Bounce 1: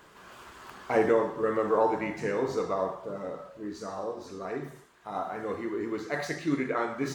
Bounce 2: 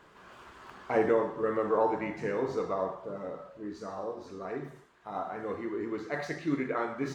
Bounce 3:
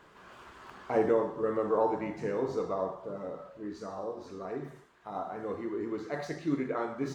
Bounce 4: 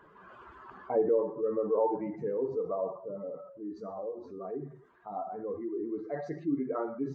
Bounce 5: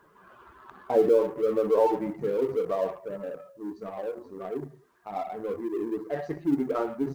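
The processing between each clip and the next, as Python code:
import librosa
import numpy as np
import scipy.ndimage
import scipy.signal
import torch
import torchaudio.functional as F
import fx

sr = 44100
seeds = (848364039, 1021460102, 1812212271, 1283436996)

y1 = fx.lowpass(x, sr, hz=3500.0, slope=6)
y1 = y1 * librosa.db_to_amplitude(-2.0)
y2 = fx.dynamic_eq(y1, sr, hz=2000.0, q=1.0, threshold_db=-49.0, ratio=4.0, max_db=-6)
y3 = fx.spec_expand(y2, sr, power=1.8)
y4 = fx.law_mismatch(y3, sr, coded='A')
y4 = y4 * librosa.db_to_amplitude(6.5)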